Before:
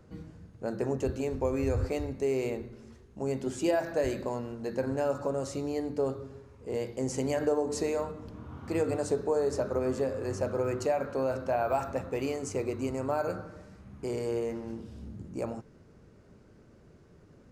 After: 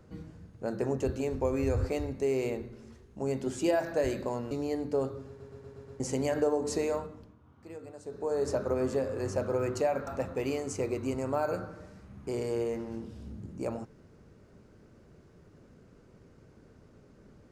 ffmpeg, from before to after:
ffmpeg -i in.wav -filter_complex "[0:a]asplit=11[link_01][link_02][link_03][link_04][link_05][link_06][link_07][link_08][link_09][link_10][link_11];[link_01]atrim=end=4.512[link_12];[link_02]atrim=start=5.558:end=6.452[link_13];[link_03]atrim=start=6.328:end=6.452[link_14];[link_04]atrim=start=6.328:end=6.452[link_15];[link_05]atrim=start=6.328:end=6.452[link_16];[link_06]atrim=start=6.328:end=6.452[link_17];[link_07]atrim=start=6.328:end=6.452[link_18];[link_08]atrim=start=7.048:end=8.41,asetpts=PTS-STARTPTS,afade=type=out:start_time=0.942:duration=0.42:silence=0.158489[link_19];[link_09]atrim=start=8.41:end=9.1,asetpts=PTS-STARTPTS,volume=-16dB[link_20];[link_10]atrim=start=9.1:end=11.122,asetpts=PTS-STARTPTS,afade=type=in:duration=0.42:silence=0.158489[link_21];[link_11]atrim=start=11.828[link_22];[link_12][link_13]acrossfade=duration=0.004:curve1=hsin:curve2=hsin[link_23];[link_23][link_14]acrossfade=duration=0.004:curve1=hsin:curve2=hsin[link_24];[link_24][link_15]acrossfade=duration=0.004:curve1=hsin:curve2=hsin[link_25];[link_25][link_16]acrossfade=duration=0.004:curve1=hsin:curve2=hsin[link_26];[link_26][link_17]acrossfade=duration=0.004:curve1=hsin:curve2=hsin[link_27];[link_27][link_18]acrossfade=duration=0.004:curve1=hsin:curve2=hsin[link_28];[link_19][link_20][link_21]concat=n=3:v=0:a=1[link_29];[link_28][link_29]acrossfade=duration=0.004:curve1=hsin:curve2=hsin[link_30];[link_30][link_22]acrossfade=duration=0.004:curve1=hsin:curve2=hsin" out.wav

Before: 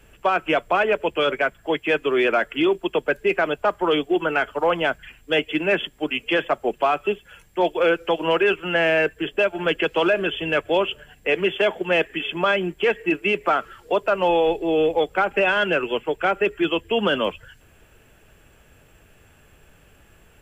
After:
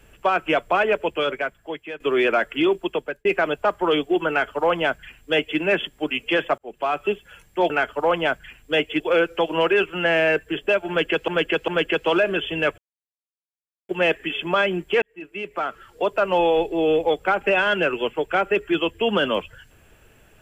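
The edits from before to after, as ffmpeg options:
ffmpeg -i in.wav -filter_complex "[0:a]asplit=11[link_01][link_02][link_03][link_04][link_05][link_06][link_07][link_08][link_09][link_10][link_11];[link_01]atrim=end=2,asetpts=PTS-STARTPTS,afade=type=out:start_time=0.95:duration=1.05:silence=0.158489[link_12];[link_02]atrim=start=2:end=3.25,asetpts=PTS-STARTPTS,afade=type=in:duration=0.004:curve=hsin:silence=0.158489,afade=type=out:start_time=0.7:duration=0.55:curve=qsin[link_13];[link_03]atrim=start=3.25:end=6.58,asetpts=PTS-STARTPTS,afade=type=in:duration=0.004:curve=hsin,afade=type=out:start_time=3.326:duration=0.004:curve=hsin[link_14];[link_04]atrim=start=6.58:end=7.702,asetpts=PTS-STARTPTS,afade=type=in:duration=0.45[link_15];[link_05]atrim=start=4.288:end=5.592[link_16];[link_06]atrim=start=7.698:end=9.982[link_17];[link_07]atrim=start=9.578:end=9.982[link_18];[link_08]atrim=start=9.578:end=10.68,asetpts=PTS-STARTPTS,afade=type=out:start_time=1.098:duration=0.004:curve=hsin[link_19];[link_09]atrim=start=10.68:end=11.79,asetpts=PTS-STARTPTS,volume=0[link_20];[link_10]atrim=start=11.79:end=12.92,asetpts=PTS-STARTPTS,afade=type=in:duration=0.004:curve=hsin,afade=type=out:start_time=1.126:duration=0.004:curve=hsin[link_21];[link_11]atrim=start=12.92,asetpts=PTS-STARTPTS,afade=type=in:duration=1.2[link_22];[link_12][link_13][link_14][link_15]concat=n=4:v=0:a=1[link_23];[link_23][link_16]acrossfade=duration=0.004:curve1=hsin:curve2=hsin[link_24];[link_24][link_17]acrossfade=duration=0.004:curve1=hsin:curve2=hsin[link_25];[link_25][link_18]acrossfade=duration=0.004:curve1=hsin:curve2=hsin[link_26];[link_19][link_20][link_21][link_22]concat=n=4:v=0:a=1[link_27];[link_26][link_27]acrossfade=duration=0.004:curve1=hsin:curve2=hsin" out.wav

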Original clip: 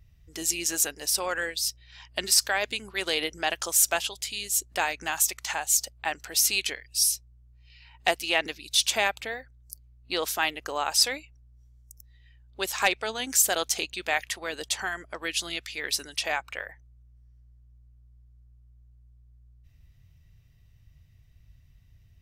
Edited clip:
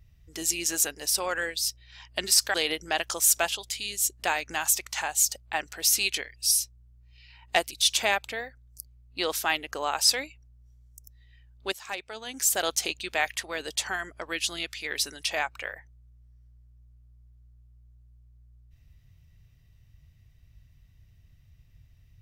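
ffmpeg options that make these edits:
ffmpeg -i in.wav -filter_complex "[0:a]asplit=4[link_01][link_02][link_03][link_04];[link_01]atrim=end=2.542[link_05];[link_02]atrim=start=3.058:end=8.232[link_06];[link_03]atrim=start=8.638:end=12.65,asetpts=PTS-STARTPTS,afade=type=out:start_time=4.008:duration=0.004:curve=hsin:silence=0.223872[link_07];[link_04]atrim=start=12.65,asetpts=PTS-STARTPTS,afade=type=in:duration=0.95:curve=qua:silence=0.223872[link_08];[link_05][link_06]acrossfade=duration=0.004:curve1=hsin:curve2=hsin[link_09];[link_07][link_08]concat=n=2:v=0:a=1[link_10];[link_09][link_10]acrossfade=duration=0.004:curve1=hsin:curve2=hsin" out.wav

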